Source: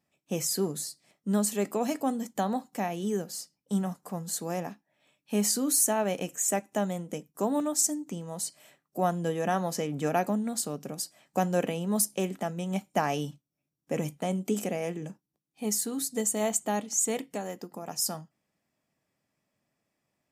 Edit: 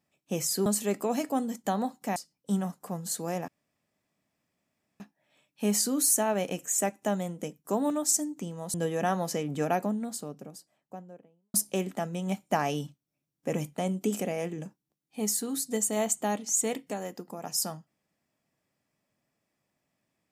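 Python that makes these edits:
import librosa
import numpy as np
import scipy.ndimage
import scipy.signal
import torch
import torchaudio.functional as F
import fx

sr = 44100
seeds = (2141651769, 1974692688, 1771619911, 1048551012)

y = fx.studio_fade_out(x, sr, start_s=9.81, length_s=2.17)
y = fx.edit(y, sr, fx.cut(start_s=0.66, length_s=0.71),
    fx.cut(start_s=2.87, length_s=0.51),
    fx.insert_room_tone(at_s=4.7, length_s=1.52),
    fx.cut(start_s=8.44, length_s=0.74), tone=tone)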